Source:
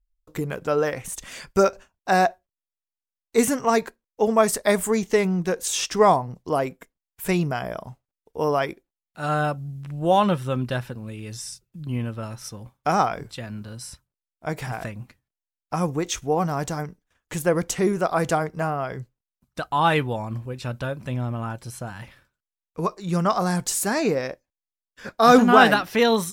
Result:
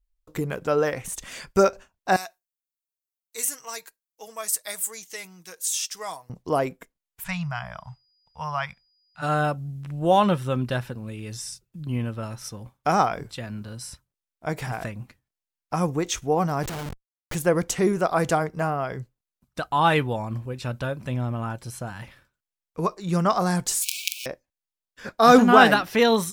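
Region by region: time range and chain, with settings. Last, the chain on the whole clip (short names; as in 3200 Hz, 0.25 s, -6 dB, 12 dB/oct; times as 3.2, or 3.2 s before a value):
2.16–6.3 pre-emphasis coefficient 0.97 + comb 6.3 ms, depth 39%
7.23–9.21 Chebyshev band-stop 130–980 Hz + whine 4900 Hz -62 dBFS + air absorption 78 m
16.63–17.35 HPF 89 Hz 6 dB/oct + sample leveller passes 1 + Schmitt trigger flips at -36.5 dBFS
23.82–24.26 companded quantiser 2-bit + brick-wall FIR high-pass 2200 Hz
whole clip: dry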